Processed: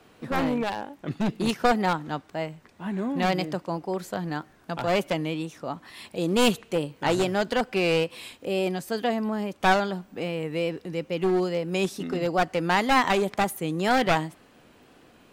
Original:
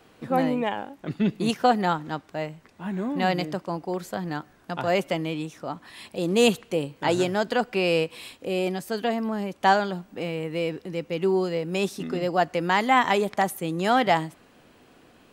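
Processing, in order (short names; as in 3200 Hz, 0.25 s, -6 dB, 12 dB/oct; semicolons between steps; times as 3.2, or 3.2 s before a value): one-sided fold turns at -20.5 dBFS; wow and flutter 56 cents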